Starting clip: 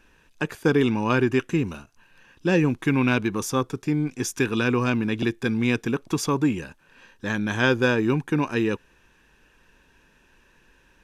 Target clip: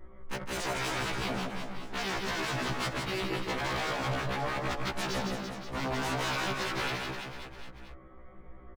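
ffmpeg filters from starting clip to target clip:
ffmpeg -i in.wav -filter_complex "[0:a]lowpass=frequency=1100:width=0.5412,lowpass=frequency=1100:width=1.3066,lowshelf=frequency=82:gain=7.5,aecho=1:1:6.8:0.97,asplit=2[link_01][link_02];[link_02]acompressor=threshold=-29dB:ratio=6,volume=-1dB[link_03];[link_01][link_03]amix=inputs=2:normalize=0,asoftclip=type=hard:threshold=-13.5dB,asetrate=55566,aresample=44100,aeval=exprs='0.0473*(abs(mod(val(0)/0.0473+3,4)-2)-1)':channel_layout=same,asplit=2[link_04][link_05];[link_05]aecho=0:1:160|336|529.6|742.6|976.8:0.631|0.398|0.251|0.158|0.1[link_06];[link_04][link_06]amix=inputs=2:normalize=0,afftfilt=real='re*1.73*eq(mod(b,3),0)':imag='im*1.73*eq(mod(b,3),0)':win_size=2048:overlap=0.75" out.wav

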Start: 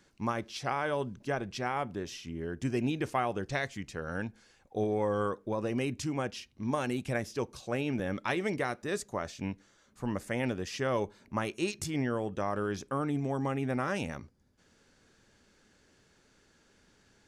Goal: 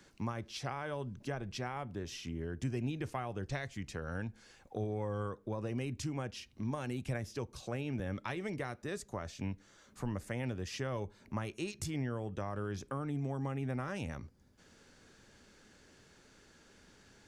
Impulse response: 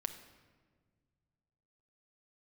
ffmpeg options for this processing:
-filter_complex "[0:a]acrossover=split=120[link_01][link_02];[link_02]acompressor=threshold=-46dB:ratio=2.5[link_03];[link_01][link_03]amix=inputs=2:normalize=0,volume=3.5dB"

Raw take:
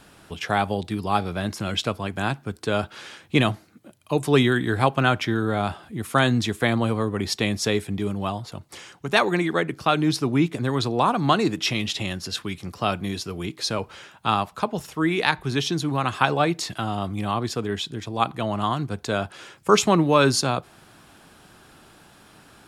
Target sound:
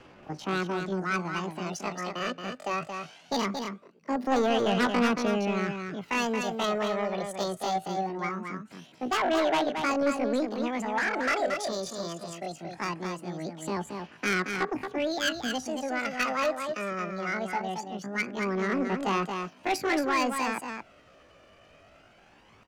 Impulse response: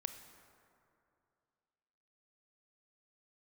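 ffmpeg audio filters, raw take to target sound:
-filter_complex "[0:a]acrossover=split=140|830[link_01][link_02][link_03];[link_03]adynamicsmooth=sensitivity=0.5:basefreq=2400[link_04];[link_01][link_02][link_04]amix=inputs=3:normalize=0,highshelf=frequency=5000:gain=10,aphaser=in_gain=1:out_gain=1:delay=3.1:decay=0.53:speed=0.21:type=sinusoidal,asetrate=80880,aresample=44100,atempo=0.545254,aemphasis=mode=reproduction:type=cd,asoftclip=type=tanh:threshold=-15.5dB,aecho=1:1:226:0.501,volume=-5.5dB"

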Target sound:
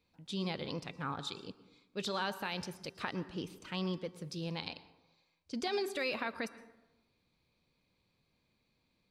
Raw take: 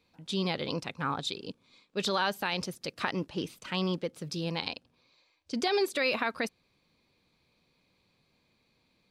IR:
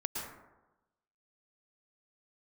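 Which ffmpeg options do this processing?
-filter_complex "[0:a]lowshelf=frequency=120:gain=6.5,bandreject=frequency=388.3:width_type=h:width=4,bandreject=frequency=776.6:width_type=h:width=4,bandreject=frequency=1164.9:width_type=h:width=4,bandreject=frequency=1553.2:width_type=h:width=4,bandreject=frequency=1941.5:width_type=h:width=4,bandreject=frequency=2329.8:width_type=h:width=4,bandreject=frequency=2718.1:width_type=h:width=4,bandreject=frequency=3106.4:width_type=h:width=4,bandreject=frequency=3494.7:width_type=h:width=4,bandreject=frequency=3883:width_type=h:width=4,bandreject=frequency=4271.3:width_type=h:width=4,bandreject=frequency=4659.6:width_type=h:width=4,bandreject=frequency=5047.9:width_type=h:width=4,bandreject=frequency=5436.2:width_type=h:width=4,bandreject=frequency=5824.5:width_type=h:width=4,bandreject=frequency=6212.8:width_type=h:width=4,bandreject=frequency=6601.1:width_type=h:width=4,bandreject=frequency=6989.4:width_type=h:width=4,bandreject=frequency=7377.7:width_type=h:width=4,bandreject=frequency=7766:width_type=h:width=4,bandreject=frequency=8154.3:width_type=h:width=4,bandreject=frequency=8542.6:width_type=h:width=4,bandreject=frequency=8930.9:width_type=h:width=4,bandreject=frequency=9319.2:width_type=h:width=4,bandreject=frequency=9707.5:width_type=h:width=4,bandreject=frequency=10095.8:width_type=h:width=4,bandreject=frequency=10484.1:width_type=h:width=4,bandreject=frequency=10872.4:width_type=h:width=4,bandreject=frequency=11260.7:width_type=h:width=4,bandreject=frequency=11649:width_type=h:width=4,bandreject=frequency=12037.3:width_type=h:width=4,bandreject=frequency=12425.6:width_type=h:width=4,bandreject=frequency=12813.9:width_type=h:width=4,bandreject=frequency=13202.2:width_type=h:width=4,bandreject=frequency=13590.5:width_type=h:width=4,bandreject=frequency=13978.8:width_type=h:width=4,bandreject=frequency=14367.1:width_type=h:width=4,bandreject=frequency=14755.4:width_type=h:width=4,bandreject=frequency=15143.7:width_type=h:width=4,asplit=2[link_01][link_02];[1:a]atrim=start_sample=2205[link_03];[link_02][link_03]afir=irnorm=-1:irlink=0,volume=-14.5dB[link_04];[link_01][link_04]amix=inputs=2:normalize=0,volume=-8.5dB"

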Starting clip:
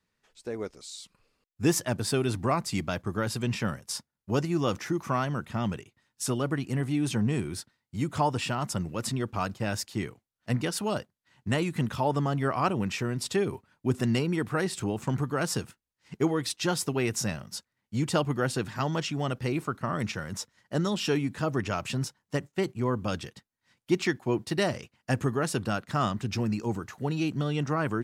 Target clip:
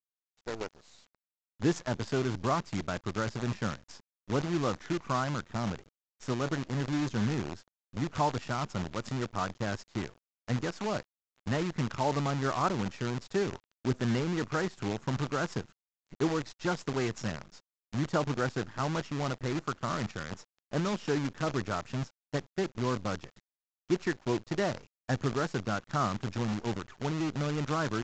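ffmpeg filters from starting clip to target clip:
ffmpeg -i in.wav -af "highshelf=frequency=2000:width_type=q:width=1.5:gain=-7,acrusher=bits=6:dc=4:mix=0:aa=0.000001,aresample=16000,aresample=44100,volume=-3.5dB" out.wav

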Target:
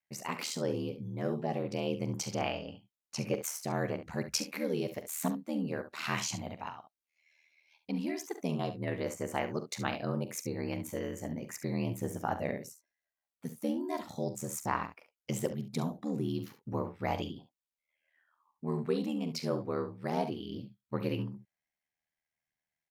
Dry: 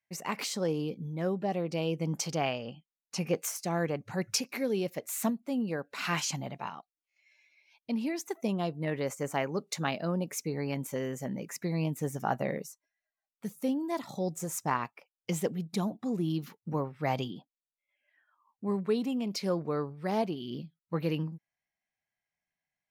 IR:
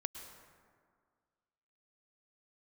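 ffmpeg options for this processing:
-af "aeval=exprs='val(0)*sin(2*PI*39*n/s)':channel_layout=same,aecho=1:1:44|69:0.224|0.251"

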